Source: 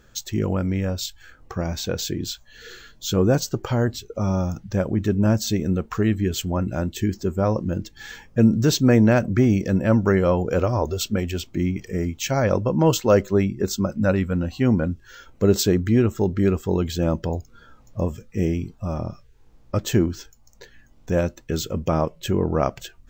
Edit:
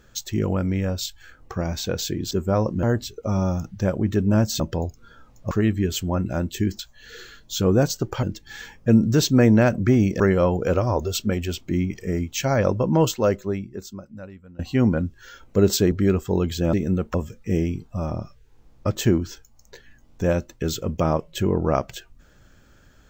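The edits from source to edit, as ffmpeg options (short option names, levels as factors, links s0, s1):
-filter_complex "[0:a]asplit=12[s0][s1][s2][s3][s4][s5][s6][s7][s8][s9][s10][s11];[s0]atrim=end=2.312[s12];[s1]atrim=start=7.208:end=7.732[s13];[s2]atrim=start=3.748:end=5.522[s14];[s3]atrim=start=17.108:end=18.022[s15];[s4]atrim=start=5.928:end=7.212[s16];[s5]atrim=start=2.308:end=3.752[s17];[s6]atrim=start=7.728:end=9.702[s18];[s7]atrim=start=10.058:end=14.45,asetpts=PTS-STARTPTS,afade=t=out:st=2.712:d=1.68:c=qua:silence=0.0668344[s19];[s8]atrim=start=14.45:end=15.782,asetpts=PTS-STARTPTS,afade=t=in:d=0.004:c=hsin:silence=0.0668344[s20];[s9]atrim=start=16.298:end=17.112[s21];[s10]atrim=start=5.518:end=5.932[s22];[s11]atrim=start=18.018[s23];[s12][s13]acrossfade=d=0.004:c1=hsin:c2=hsin[s24];[s24][s14]acrossfade=d=0.004:c1=hsin:c2=hsin[s25];[s25][s15]acrossfade=d=0.004:c1=hsin:c2=hsin[s26];[s26][s16]acrossfade=d=0.004:c1=hsin:c2=hsin[s27];[s27][s17]acrossfade=d=0.004:c1=hsin:c2=hsin[s28];[s28][s18]acrossfade=d=0.004:c1=hsin:c2=hsin[s29];[s19][s20]concat=n=2:v=0:a=1[s30];[s29][s30]acrossfade=d=0.004:c1=hsin:c2=hsin[s31];[s31][s21]acrossfade=d=0.004:c1=hsin:c2=hsin[s32];[s32][s22]acrossfade=d=0.004:c1=hsin:c2=hsin[s33];[s33][s23]acrossfade=d=0.004:c1=hsin:c2=hsin"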